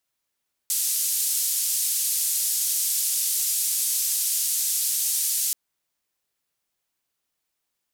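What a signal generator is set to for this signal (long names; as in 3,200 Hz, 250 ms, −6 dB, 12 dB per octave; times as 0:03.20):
band-limited noise 6,200–13,000 Hz, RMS −24.5 dBFS 4.83 s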